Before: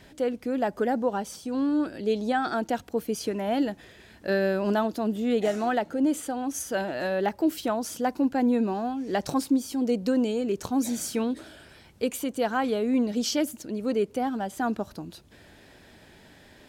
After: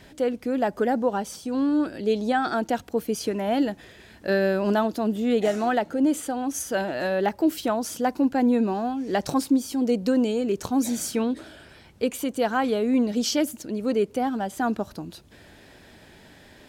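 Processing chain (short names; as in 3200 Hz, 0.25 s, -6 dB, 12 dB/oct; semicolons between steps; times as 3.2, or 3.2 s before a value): 11.11–12.19 high shelf 5800 Hz -4.5 dB; gain +2.5 dB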